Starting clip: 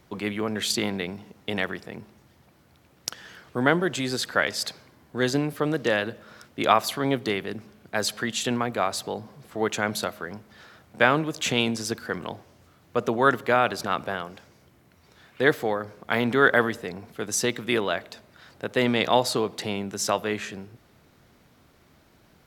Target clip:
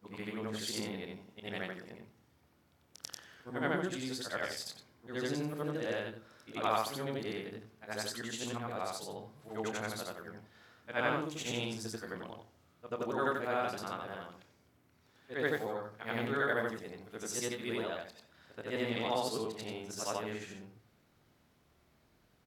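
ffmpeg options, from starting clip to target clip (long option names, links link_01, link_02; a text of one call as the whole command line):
ffmpeg -i in.wav -filter_complex "[0:a]afftfilt=real='re':imag='-im':win_size=8192:overlap=0.75,adynamicequalizer=threshold=0.00794:dfrequency=2100:dqfactor=0.71:tfrequency=2100:tqfactor=0.71:attack=5:release=100:ratio=0.375:range=2:mode=cutabove:tftype=bell,asplit=2[link_01][link_02];[link_02]adelay=27,volume=-10.5dB[link_03];[link_01][link_03]amix=inputs=2:normalize=0,volume=-7dB" out.wav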